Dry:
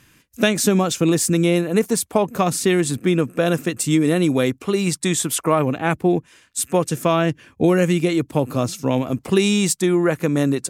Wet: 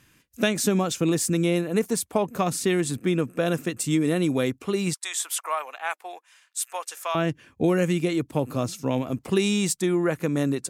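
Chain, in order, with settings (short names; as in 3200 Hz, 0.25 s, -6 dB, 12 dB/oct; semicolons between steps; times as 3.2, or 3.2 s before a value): 4.94–7.15 HPF 750 Hz 24 dB/oct; gain -5.5 dB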